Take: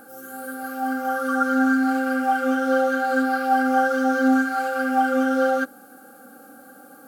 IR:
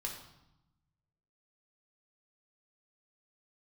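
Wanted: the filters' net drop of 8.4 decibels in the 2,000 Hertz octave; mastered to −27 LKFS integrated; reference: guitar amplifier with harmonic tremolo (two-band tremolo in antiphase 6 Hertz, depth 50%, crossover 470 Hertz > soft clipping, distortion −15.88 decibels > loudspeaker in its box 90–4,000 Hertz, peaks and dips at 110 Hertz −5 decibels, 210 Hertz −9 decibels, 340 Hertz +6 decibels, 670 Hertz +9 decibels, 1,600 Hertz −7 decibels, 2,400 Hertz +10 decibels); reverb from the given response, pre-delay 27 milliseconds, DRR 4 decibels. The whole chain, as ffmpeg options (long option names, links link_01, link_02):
-filter_complex "[0:a]equalizer=frequency=2000:width_type=o:gain=-5,asplit=2[link_01][link_02];[1:a]atrim=start_sample=2205,adelay=27[link_03];[link_02][link_03]afir=irnorm=-1:irlink=0,volume=-4dB[link_04];[link_01][link_04]amix=inputs=2:normalize=0,acrossover=split=470[link_05][link_06];[link_05]aeval=exprs='val(0)*(1-0.5/2+0.5/2*cos(2*PI*6*n/s))':channel_layout=same[link_07];[link_06]aeval=exprs='val(0)*(1-0.5/2-0.5/2*cos(2*PI*6*n/s))':channel_layout=same[link_08];[link_07][link_08]amix=inputs=2:normalize=0,asoftclip=threshold=-17dB,highpass=90,equalizer=frequency=110:width_type=q:width=4:gain=-5,equalizer=frequency=210:width_type=q:width=4:gain=-9,equalizer=frequency=340:width_type=q:width=4:gain=6,equalizer=frequency=670:width_type=q:width=4:gain=9,equalizer=frequency=1600:width_type=q:width=4:gain=-7,equalizer=frequency=2400:width_type=q:width=4:gain=10,lowpass=frequency=4000:width=0.5412,lowpass=frequency=4000:width=1.3066,volume=-3dB"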